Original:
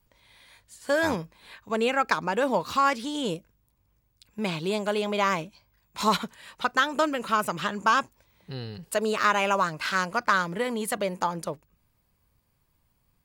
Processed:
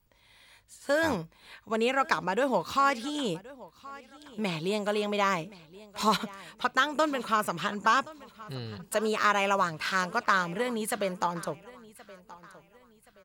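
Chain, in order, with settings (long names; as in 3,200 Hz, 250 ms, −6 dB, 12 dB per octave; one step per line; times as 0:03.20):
repeating echo 1,074 ms, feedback 36%, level −20 dB
level −2 dB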